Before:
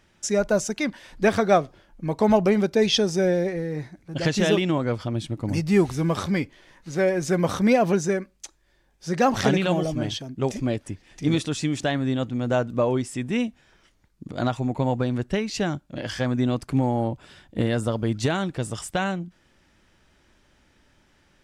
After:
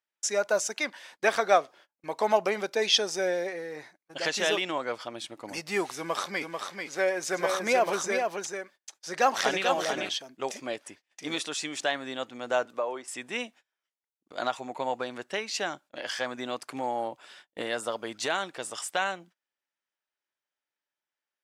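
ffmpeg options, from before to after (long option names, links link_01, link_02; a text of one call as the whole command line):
ffmpeg -i in.wav -filter_complex "[0:a]asettb=1/sr,asplit=3[link_01][link_02][link_03];[link_01]atrim=end=5.974[link_04];[link_02]atrim=start=5.97:end=10.09,asetpts=PTS-STARTPTS,afade=type=in:duration=0.004:curve=qsin,afade=type=out:start_time=4.116:duration=0.004:curve=qsin,aecho=1:1:441:0.562,atrim=end_sample=181692[link_05];[link_03]atrim=start=10.086[link_06];[link_04][link_05]acrossfade=duration=0.004:curve1=hsin:curve2=qsin[link_07];[link_07][link_06]acrossfade=duration=0.004:curve1=qsin:curve2=hsin,asettb=1/sr,asplit=3[link_08][link_09][link_10];[link_08]atrim=end=12.654[link_11];[link_09]atrim=start=12.65:end=13.08,asetpts=PTS-STARTPTS,afade=type=in:duration=0.004:curve=qsin,afade=type=out:start_time=0.426:duration=0.004:curve=qsin,acrossover=split=330|1800[link_12][link_13][link_14];[link_12]acompressor=threshold=-38dB:ratio=4[link_15];[link_13]acompressor=threshold=-23dB:ratio=4[link_16];[link_14]acompressor=threshold=-55dB:ratio=4[link_17];[link_15][link_16][link_17]amix=inputs=3:normalize=0[link_18];[link_10]atrim=start=13.076[link_19];[link_11][link_18]acrossfade=duration=0.004:curve1=hsin:curve2=qsin[link_20];[link_20][link_19]acrossfade=duration=0.004:curve1=qsin:curve2=hsin,highpass=640,agate=range=-28dB:threshold=-51dB:ratio=16:detection=peak" out.wav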